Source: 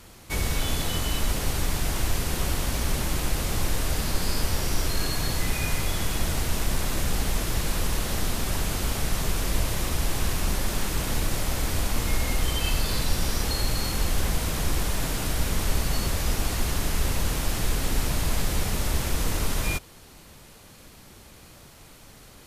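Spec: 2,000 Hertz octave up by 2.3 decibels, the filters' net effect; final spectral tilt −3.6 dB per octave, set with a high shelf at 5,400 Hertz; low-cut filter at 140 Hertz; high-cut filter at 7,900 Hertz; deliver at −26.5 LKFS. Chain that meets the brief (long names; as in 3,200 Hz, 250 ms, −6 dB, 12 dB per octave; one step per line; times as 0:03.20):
high-pass filter 140 Hz
low-pass filter 7,900 Hz
parametric band 2,000 Hz +4 dB
high-shelf EQ 5,400 Hz −7.5 dB
level +4.5 dB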